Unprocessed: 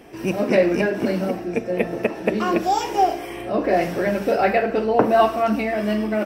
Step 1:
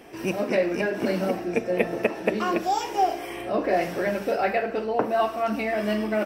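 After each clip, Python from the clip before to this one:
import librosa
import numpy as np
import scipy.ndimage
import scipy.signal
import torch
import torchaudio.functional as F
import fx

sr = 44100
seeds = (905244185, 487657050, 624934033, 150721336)

y = fx.low_shelf(x, sr, hz=290.0, db=-6.0)
y = fx.rider(y, sr, range_db=4, speed_s=0.5)
y = y * librosa.db_to_amplitude(-3.0)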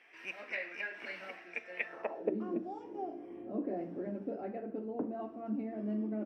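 y = fx.filter_sweep_bandpass(x, sr, from_hz=2100.0, to_hz=260.0, start_s=1.85, end_s=2.37, q=2.7)
y = y * librosa.db_to_amplitude(-4.0)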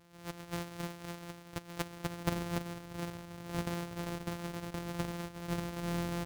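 y = np.r_[np.sort(x[:len(x) // 256 * 256].reshape(-1, 256), axis=1).ravel(), x[len(x) // 256 * 256:]]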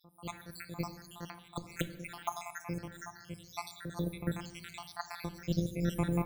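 y = fx.spec_dropout(x, sr, seeds[0], share_pct=80)
y = fx.room_shoebox(y, sr, seeds[1], volume_m3=460.0, walls='mixed', distance_m=0.41)
y = y * librosa.db_to_amplitude(6.5)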